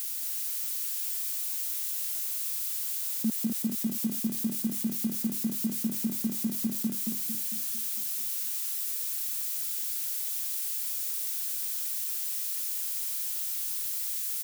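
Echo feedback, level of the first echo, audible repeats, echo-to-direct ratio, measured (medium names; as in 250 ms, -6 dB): 54%, -4.5 dB, 6, -3.0 dB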